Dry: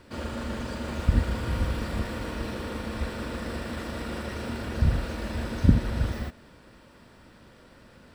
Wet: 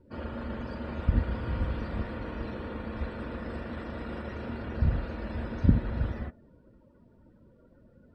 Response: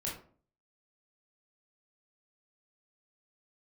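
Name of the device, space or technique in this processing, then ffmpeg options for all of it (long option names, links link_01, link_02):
behind a face mask: -af "highshelf=frequency=2300:gain=-5.5,afftdn=noise_reduction=21:noise_floor=-50,volume=-3dB"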